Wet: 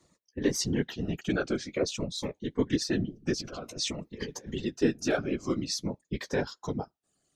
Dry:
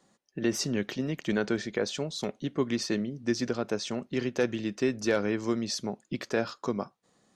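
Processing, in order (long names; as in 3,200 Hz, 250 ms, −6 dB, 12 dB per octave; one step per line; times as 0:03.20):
reverb reduction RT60 1.3 s
0:03.40–0:04.65: compressor whose output falls as the input rises −36 dBFS, ratio −0.5
flanger 1.5 Hz, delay 5.8 ms, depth 8.8 ms, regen −20%
random phases in short frames
phaser whose notches keep moving one way falling 0.52 Hz
level +5 dB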